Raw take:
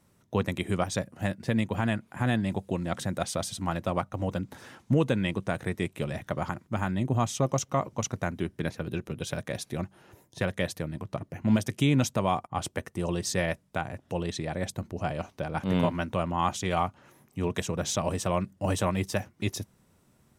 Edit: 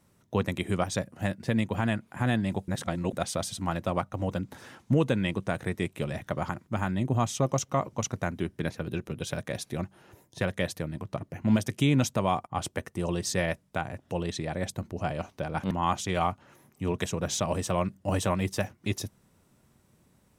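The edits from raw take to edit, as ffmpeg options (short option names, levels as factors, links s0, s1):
-filter_complex "[0:a]asplit=4[s0][s1][s2][s3];[s0]atrim=end=2.682[s4];[s1]atrim=start=2.678:end=3.132,asetpts=PTS-STARTPTS,areverse[s5];[s2]atrim=start=3.128:end=15.712[s6];[s3]atrim=start=16.268[s7];[s4][s5]acrossfade=d=0.004:c1=hsin:c2=hsin[s8];[s8][s6]acrossfade=d=0.004:c1=hsin:c2=hsin[s9];[s9][s7]acrossfade=d=0.004:c1=hsin:c2=hsin"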